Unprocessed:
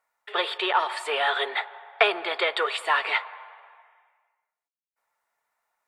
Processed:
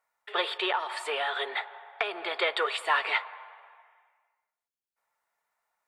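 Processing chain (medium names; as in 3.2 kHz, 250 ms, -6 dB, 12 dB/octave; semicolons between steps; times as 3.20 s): 0.74–2.38 s: compression 6:1, threshold -24 dBFS, peak gain reduction 10.5 dB; trim -2.5 dB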